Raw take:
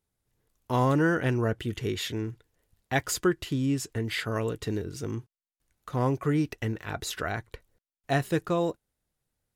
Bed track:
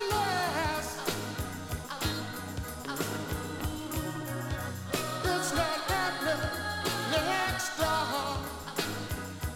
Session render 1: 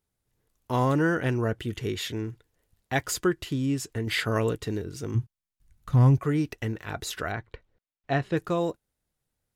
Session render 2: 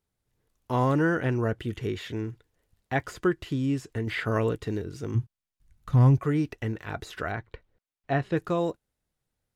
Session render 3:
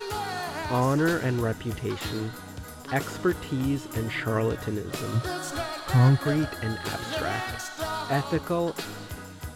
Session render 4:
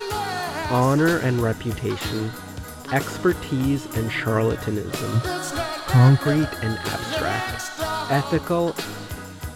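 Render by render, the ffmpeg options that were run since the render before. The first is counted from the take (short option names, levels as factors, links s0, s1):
-filter_complex "[0:a]asplit=3[s0][s1][s2];[s0]afade=t=out:st=5.14:d=0.02[s3];[s1]asubboost=boost=7:cutoff=160,afade=t=in:st=5.14:d=0.02,afade=t=out:st=6.18:d=0.02[s4];[s2]afade=t=in:st=6.18:d=0.02[s5];[s3][s4][s5]amix=inputs=3:normalize=0,asettb=1/sr,asplit=3[s6][s7][s8];[s6]atrim=end=7.324[s9];[s7]atrim=start=7.32:end=8.37,asetpts=PTS-STARTPTS,afade=t=in:d=0.004:c=qsin,afade=t=out:st=1.046:d=0.004:c=qsin,lowpass=3600[s10];[s8]atrim=start=8.366[s11];[s9][s10]acrossfade=d=0.004:c1=hsin:c2=qsin[s12];[s12][s11]acrossfade=d=0.004:c1=qsin:c2=hsin,asplit=3[s13][s14][s15];[s13]atrim=end=4.072[s16];[s14]atrim=start=4.068:end=4.562,asetpts=PTS-STARTPTS,volume=1.58[s17];[s15]atrim=start=4.558[s18];[s16][s17]acrossfade=d=0.004:c1=hsin:c2=hsin[s19];[s19][s18]acrossfade=d=0.004:c1=hsin:c2=hsin"
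-filter_complex "[0:a]acrossover=split=2500[s0][s1];[s1]acompressor=threshold=0.00708:ratio=4:attack=1:release=60[s2];[s0][s2]amix=inputs=2:normalize=0,highshelf=f=7700:g=-5.5"
-filter_complex "[1:a]volume=0.75[s0];[0:a][s0]amix=inputs=2:normalize=0"
-af "volume=1.78"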